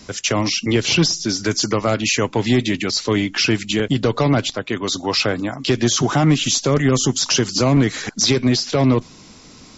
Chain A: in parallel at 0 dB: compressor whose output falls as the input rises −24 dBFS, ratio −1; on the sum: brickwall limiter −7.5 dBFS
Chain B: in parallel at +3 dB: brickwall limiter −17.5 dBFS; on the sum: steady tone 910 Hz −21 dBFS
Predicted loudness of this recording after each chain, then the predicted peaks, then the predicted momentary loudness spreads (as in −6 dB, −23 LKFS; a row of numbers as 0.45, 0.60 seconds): −16.5, −14.0 LKFS; −7.5, −2.5 dBFS; 3, 4 LU